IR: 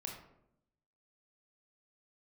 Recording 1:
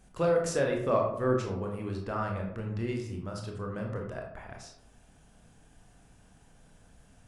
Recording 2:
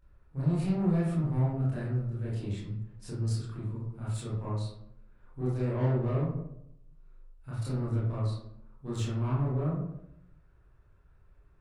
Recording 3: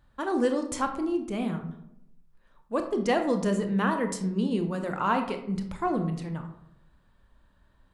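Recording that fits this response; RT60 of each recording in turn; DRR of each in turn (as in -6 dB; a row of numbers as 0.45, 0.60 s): 1; 0.80, 0.75, 0.80 s; 0.0, -9.0, 5.5 dB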